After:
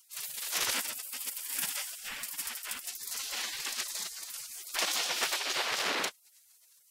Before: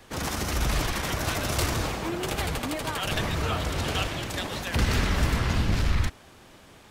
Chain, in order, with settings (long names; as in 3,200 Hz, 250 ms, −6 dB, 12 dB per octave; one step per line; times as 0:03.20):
gate on every frequency bin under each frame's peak −25 dB weak
0:00.73–0:02.88: thirty-one-band graphic EQ 250 Hz +5 dB, 400 Hz −9 dB, 4,000 Hz −7 dB, 6,300 Hz −5 dB
level +5.5 dB